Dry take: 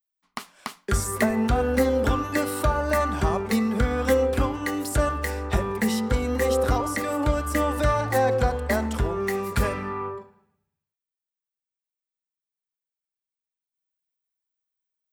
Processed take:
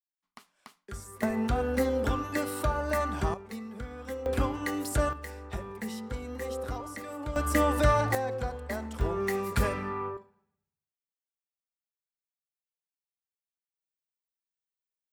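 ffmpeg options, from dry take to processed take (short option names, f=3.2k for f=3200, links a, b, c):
-af "asetnsamples=n=441:p=0,asendcmd='1.23 volume volume -6dB;3.34 volume volume -17dB;4.26 volume volume -4.5dB;5.13 volume volume -13dB;7.36 volume volume -1dB;8.15 volume volume -11dB;9.01 volume volume -3.5dB;10.17 volume volume -10.5dB',volume=-17.5dB"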